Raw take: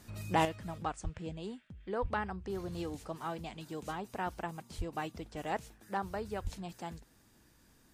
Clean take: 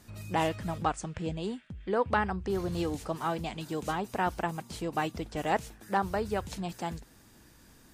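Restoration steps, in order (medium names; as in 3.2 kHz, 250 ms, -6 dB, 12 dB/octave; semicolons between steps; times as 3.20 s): de-plosive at 1.03/2.01/4.77/6.43 s; gain correction +7.5 dB, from 0.45 s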